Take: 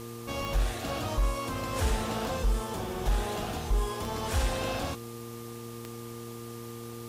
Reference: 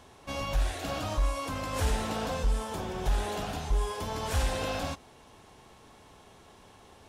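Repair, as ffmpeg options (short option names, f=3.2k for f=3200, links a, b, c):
-af "adeclick=t=4,bandreject=f=116.7:t=h:w=4,bandreject=f=233.4:t=h:w=4,bandreject=f=350.1:t=h:w=4,bandreject=f=466.8:t=h:w=4,bandreject=f=1.2k:w=30,afwtdn=0.0032"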